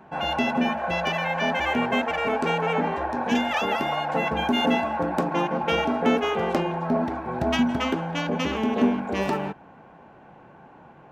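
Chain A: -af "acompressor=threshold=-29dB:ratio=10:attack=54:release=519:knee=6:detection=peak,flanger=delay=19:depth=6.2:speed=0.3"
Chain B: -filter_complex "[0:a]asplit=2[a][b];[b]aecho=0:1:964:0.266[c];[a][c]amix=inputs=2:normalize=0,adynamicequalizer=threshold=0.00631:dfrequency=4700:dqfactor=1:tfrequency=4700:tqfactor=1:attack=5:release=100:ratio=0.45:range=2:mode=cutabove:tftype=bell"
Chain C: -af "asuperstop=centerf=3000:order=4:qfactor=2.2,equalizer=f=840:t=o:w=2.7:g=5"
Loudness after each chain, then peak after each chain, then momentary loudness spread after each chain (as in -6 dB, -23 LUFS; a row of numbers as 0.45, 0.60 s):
-34.5, -25.0, -21.5 LUFS; -19.5, -10.0, -6.5 dBFS; 19, 6, 4 LU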